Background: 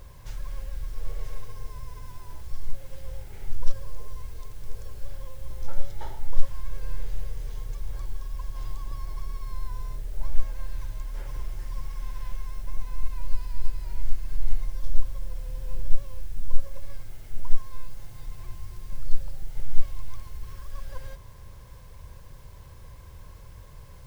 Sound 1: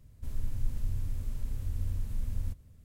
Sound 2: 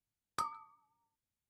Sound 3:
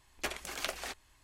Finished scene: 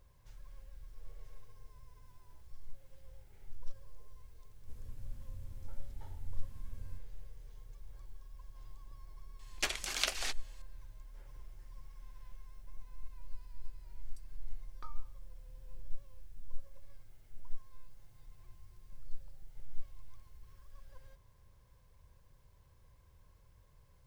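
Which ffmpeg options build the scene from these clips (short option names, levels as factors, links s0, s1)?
-filter_complex "[0:a]volume=0.126[s0];[3:a]equalizer=f=4900:w=0.42:g=10.5[s1];[2:a]acrossover=split=5000[s2][s3];[s2]adelay=660[s4];[s4][s3]amix=inputs=2:normalize=0[s5];[1:a]atrim=end=2.84,asetpts=PTS-STARTPTS,volume=0.211,afade=t=in:d=0.004:c=hsin,afade=t=out:st=2.836:d=0.004:c=hsin,adelay=196245S[s6];[s1]atrim=end=1.23,asetpts=PTS-STARTPTS,volume=0.631,afade=t=in:d=0.004:c=hsin,afade=t=out:st=1.226:d=0.004:c=hsin,adelay=9390[s7];[s5]atrim=end=1.49,asetpts=PTS-STARTPTS,volume=0.188,afade=t=in:d=0.004:c=hsin,afade=t=out:st=1.486:d=0.004:c=hsin,adelay=13780[s8];[s0][s6][s7][s8]amix=inputs=4:normalize=0"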